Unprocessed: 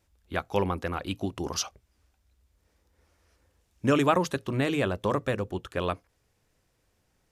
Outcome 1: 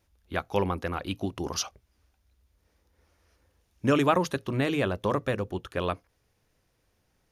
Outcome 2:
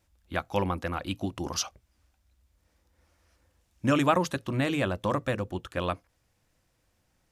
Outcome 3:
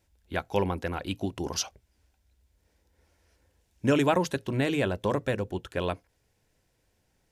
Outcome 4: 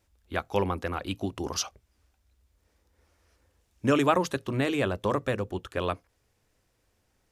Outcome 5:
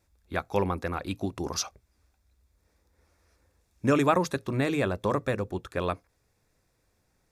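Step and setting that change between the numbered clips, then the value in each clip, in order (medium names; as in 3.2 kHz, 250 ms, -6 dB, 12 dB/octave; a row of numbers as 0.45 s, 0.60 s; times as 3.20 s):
band-stop, frequency: 7.7 kHz, 420 Hz, 1.2 kHz, 160 Hz, 3 kHz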